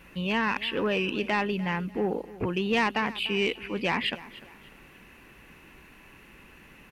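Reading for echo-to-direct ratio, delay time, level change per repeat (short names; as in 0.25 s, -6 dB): -17.5 dB, 0.296 s, -9.5 dB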